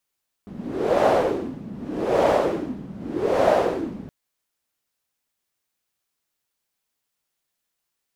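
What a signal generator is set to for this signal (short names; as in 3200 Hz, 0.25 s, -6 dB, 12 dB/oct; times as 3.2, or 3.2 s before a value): wind-like swept noise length 3.62 s, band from 200 Hz, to 620 Hz, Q 3.5, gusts 3, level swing 18 dB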